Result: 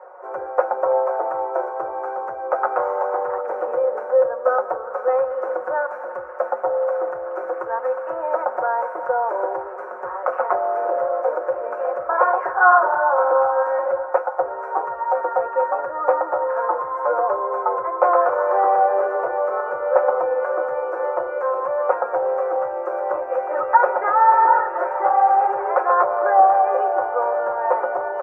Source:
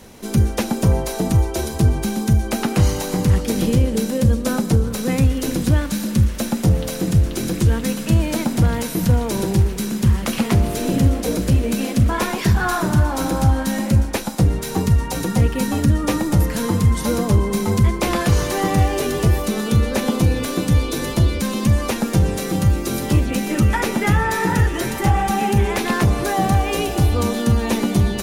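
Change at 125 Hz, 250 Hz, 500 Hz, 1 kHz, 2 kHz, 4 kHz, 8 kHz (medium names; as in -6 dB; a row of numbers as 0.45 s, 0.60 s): under -40 dB, -24.0 dB, +5.5 dB, +8.5 dB, +0.5 dB, under -35 dB, under -40 dB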